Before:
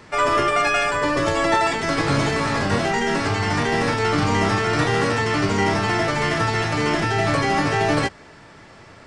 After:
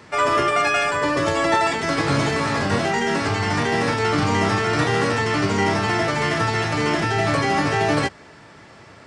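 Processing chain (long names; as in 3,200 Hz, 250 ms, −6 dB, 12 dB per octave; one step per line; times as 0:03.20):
high-pass filter 62 Hz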